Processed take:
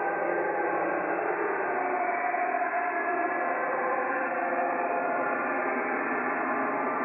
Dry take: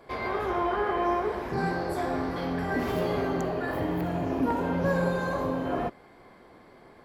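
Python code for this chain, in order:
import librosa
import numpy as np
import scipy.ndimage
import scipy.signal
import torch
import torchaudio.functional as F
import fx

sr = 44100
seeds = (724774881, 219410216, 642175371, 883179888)

y = fx.tilt_eq(x, sr, slope=4.5)
y = fx.paulstretch(y, sr, seeds[0], factor=20.0, window_s=0.05, from_s=1.88)
y = fx.brickwall_lowpass(y, sr, high_hz=2700.0)
y = fx.rider(y, sr, range_db=10, speed_s=0.5)
y = scipy.signal.sosfilt(scipy.signal.butter(2, 240.0, 'highpass', fs=sr, output='sos'), y)
y = y * 10.0 ** (4.5 / 20.0)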